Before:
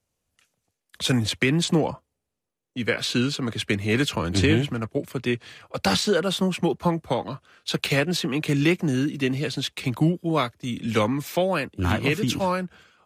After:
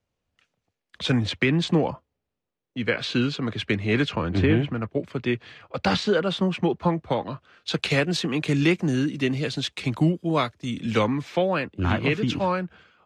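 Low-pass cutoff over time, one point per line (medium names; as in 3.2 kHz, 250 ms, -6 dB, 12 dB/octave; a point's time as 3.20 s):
3.98 s 3.9 kHz
4.44 s 2 kHz
5.08 s 3.7 kHz
7.32 s 3.7 kHz
7.97 s 7.4 kHz
10.81 s 7.4 kHz
11.26 s 3.7 kHz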